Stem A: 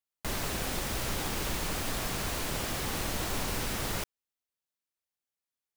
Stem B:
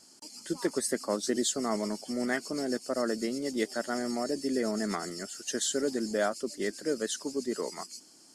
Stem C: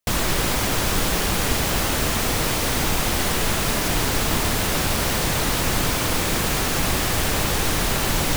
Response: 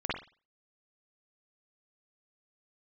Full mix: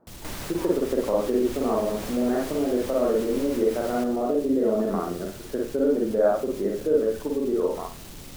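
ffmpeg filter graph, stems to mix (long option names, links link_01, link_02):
-filter_complex "[0:a]volume=-2.5dB[link_01];[1:a]lowpass=frequency=1200:width=0.5412,lowpass=frequency=1200:width=1.3066,equalizer=frequency=490:width_type=o:width=0.59:gain=5.5,volume=1.5dB,asplit=3[link_02][link_03][link_04];[link_03]volume=-4.5dB[link_05];[2:a]acrossover=split=460|3000[link_06][link_07][link_08];[link_07]acompressor=threshold=-34dB:ratio=6[link_09];[link_06][link_09][link_08]amix=inputs=3:normalize=0,asoftclip=type=tanh:threshold=-19dB,volume=-19dB,asplit=2[link_10][link_11];[link_11]volume=-10.5dB[link_12];[link_04]apad=whole_len=368910[link_13];[link_10][link_13]sidechaincompress=threshold=-32dB:ratio=8:attack=16:release=161[link_14];[link_01][link_02]amix=inputs=2:normalize=0,acompressor=threshold=-29dB:ratio=6,volume=0dB[link_15];[3:a]atrim=start_sample=2205[link_16];[link_05][link_12]amix=inputs=2:normalize=0[link_17];[link_17][link_16]afir=irnorm=-1:irlink=0[link_18];[link_14][link_15][link_18]amix=inputs=3:normalize=0"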